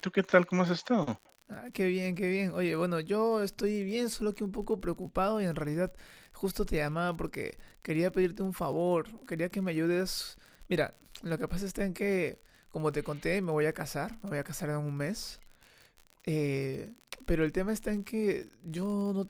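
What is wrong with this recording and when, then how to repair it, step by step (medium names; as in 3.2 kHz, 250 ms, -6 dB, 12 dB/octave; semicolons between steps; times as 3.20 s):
crackle 49 per s -40 dBFS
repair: de-click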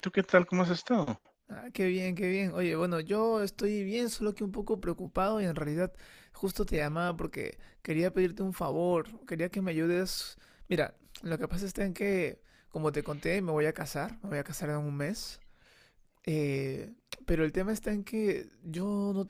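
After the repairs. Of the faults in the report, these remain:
nothing left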